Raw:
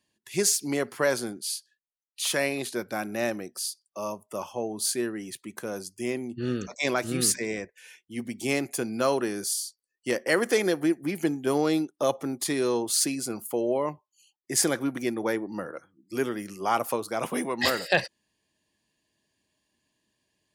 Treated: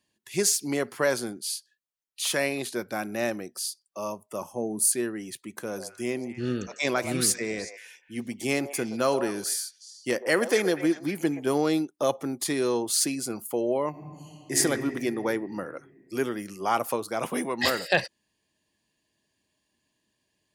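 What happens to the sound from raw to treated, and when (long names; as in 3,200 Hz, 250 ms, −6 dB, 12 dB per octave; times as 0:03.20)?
0:04.41–0:04.92: drawn EQ curve 100 Hz 0 dB, 180 Hz +6 dB, 790 Hz −3 dB, 2,100 Hz −11 dB, 3,200 Hz −16 dB, 9,600 Hz +8 dB, 16,000 Hz +3 dB
0:05.45–0:11.46: echo through a band-pass that steps 123 ms, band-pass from 700 Hz, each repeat 1.4 octaves, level −7 dB
0:13.90–0:14.55: thrown reverb, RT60 2.9 s, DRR −7 dB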